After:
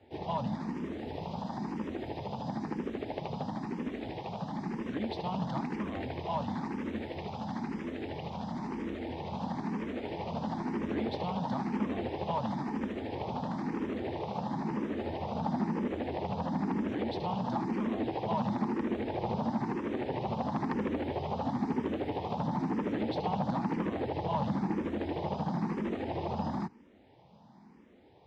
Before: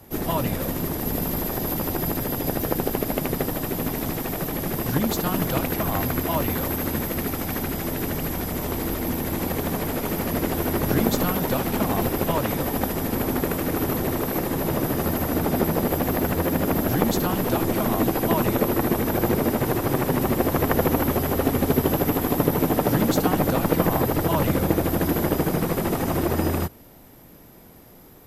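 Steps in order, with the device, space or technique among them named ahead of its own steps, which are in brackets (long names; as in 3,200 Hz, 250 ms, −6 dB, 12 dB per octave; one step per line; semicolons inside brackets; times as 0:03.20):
barber-pole phaser into a guitar amplifier (frequency shifter mixed with the dry sound +1 Hz; soft clipping −18 dBFS, distortion −16 dB; loudspeaker in its box 89–4,500 Hz, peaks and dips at 210 Hz +8 dB, 870 Hz +9 dB, 1,400 Hz −6 dB)
level −8 dB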